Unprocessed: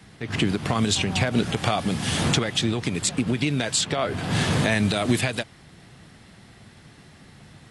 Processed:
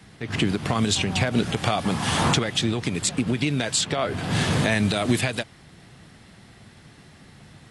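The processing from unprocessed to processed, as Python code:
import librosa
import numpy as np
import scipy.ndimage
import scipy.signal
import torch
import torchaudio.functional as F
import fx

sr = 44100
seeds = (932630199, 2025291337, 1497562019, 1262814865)

y = fx.peak_eq(x, sr, hz=1000.0, db=10.5, octaves=0.98, at=(1.84, 2.34))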